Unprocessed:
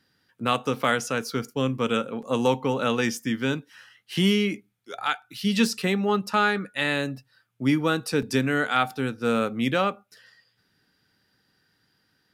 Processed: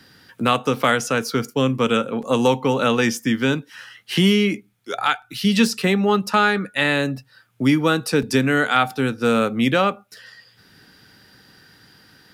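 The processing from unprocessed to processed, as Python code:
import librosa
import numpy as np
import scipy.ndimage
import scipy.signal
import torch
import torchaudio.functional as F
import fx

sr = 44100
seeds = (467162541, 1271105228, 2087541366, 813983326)

y = fx.band_squash(x, sr, depth_pct=40)
y = y * 10.0 ** (5.5 / 20.0)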